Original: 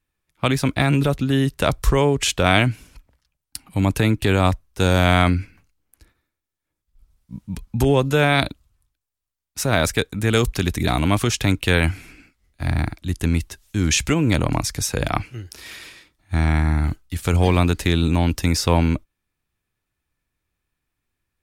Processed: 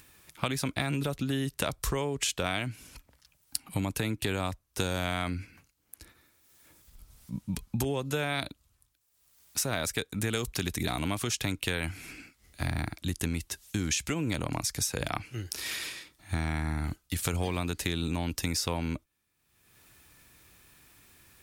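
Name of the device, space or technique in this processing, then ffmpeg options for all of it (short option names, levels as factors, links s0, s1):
upward and downward compression: -af "highpass=f=89:p=1,highshelf=f=3800:g=7,acompressor=mode=upward:threshold=0.00891:ratio=2.5,acompressor=threshold=0.0398:ratio=6"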